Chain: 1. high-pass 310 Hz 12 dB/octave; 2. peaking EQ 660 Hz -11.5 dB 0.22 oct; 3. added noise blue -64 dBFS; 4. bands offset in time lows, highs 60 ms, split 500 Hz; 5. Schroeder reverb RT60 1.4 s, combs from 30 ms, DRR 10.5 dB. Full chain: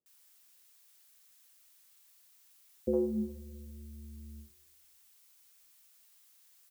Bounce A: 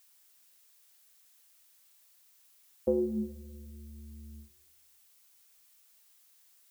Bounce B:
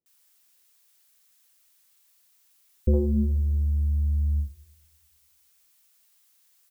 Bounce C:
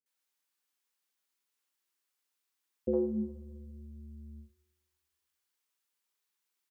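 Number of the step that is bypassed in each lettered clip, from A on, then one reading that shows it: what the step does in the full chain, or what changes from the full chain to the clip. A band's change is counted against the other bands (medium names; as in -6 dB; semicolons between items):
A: 4, echo-to-direct 14.0 dB to -10.5 dB; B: 1, crest factor change -7.0 dB; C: 3, loudness change +3.5 LU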